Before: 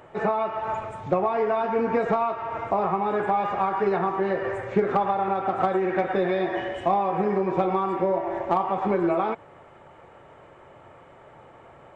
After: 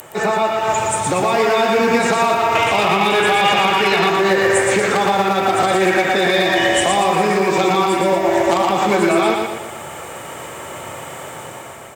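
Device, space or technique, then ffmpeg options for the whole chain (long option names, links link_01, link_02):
FM broadcast chain: -filter_complex "[0:a]asettb=1/sr,asplit=3[link_01][link_02][link_03];[link_01]atrim=end=2.554[link_04];[link_02]atrim=start=2.55:end=4.1,asetpts=PTS-STARTPTS,afade=type=in:duration=0.004:curve=qsin,afade=type=out:start_time=1.546:duration=0.004:curve=qsin,equalizer=frequency=2900:width_type=o:width=1.1:gain=14[link_05];[link_03]atrim=start=4.096[link_06];[link_04][link_05]acrossfade=duration=0.004:curve1=hsin:curve2=qsin[link_07];[link_07][link_06]acrossfade=duration=0.004:curve1=qsin:curve2=hsin,highpass=80,dynaudnorm=framelen=280:gausssize=5:maxgain=8dB,acrossover=split=160|720|1600[link_08][link_09][link_10][link_11];[link_08]acompressor=threshold=-40dB:ratio=4[link_12];[link_09]acompressor=threshold=-24dB:ratio=4[link_13];[link_10]acompressor=threshold=-33dB:ratio=4[link_14];[link_11]acompressor=threshold=-32dB:ratio=4[link_15];[link_12][link_13][link_14][link_15]amix=inputs=4:normalize=0,aemphasis=mode=production:type=75fm,alimiter=limit=-16.5dB:level=0:latency=1:release=54,asoftclip=type=hard:threshold=-18dB,lowpass=frequency=15000:width=0.5412,lowpass=frequency=15000:width=1.3066,aemphasis=mode=production:type=75fm,aecho=1:1:118|236|354|472|590|708:0.631|0.29|0.134|0.0614|0.0283|0.013,volume=8.5dB"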